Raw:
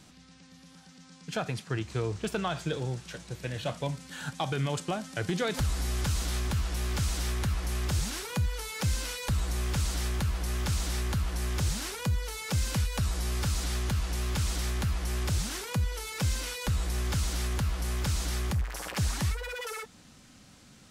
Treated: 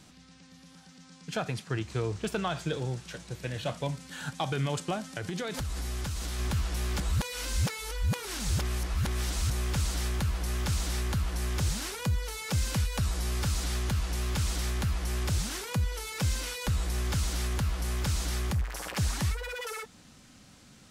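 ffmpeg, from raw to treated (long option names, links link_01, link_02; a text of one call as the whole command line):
ffmpeg -i in.wav -filter_complex "[0:a]asplit=3[link_01][link_02][link_03];[link_01]afade=type=out:start_time=5.12:duration=0.02[link_04];[link_02]acompressor=threshold=-30dB:ratio=6:attack=3.2:release=140:knee=1:detection=peak,afade=type=in:start_time=5.12:duration=0.02,afade=type=out:start_time=6.38:duration=0.02[link_05];[link_03]afade=type=in:start_time=6.38:duration=0.02[link_06];[link_04][link_05][link_06]amix=inputs=3:normalize=0,asplit=3[link_07][link_08][link_09];[link_07]atrim=end=7.002[link_10];[link_08]atrim=start=6.998:end=9.502,asetpts=PTS-STARTPTS,areverse[link_11];[link_09]atrim=start=9.498[link_12];[link_10][link_11]acrossfade=duration=0.004:curve1=hsin:curve2=hsin[link_13];[link_13][link_12]acrossfade=duration=0.004:curve1=hsin:curve2=hsin" out.wav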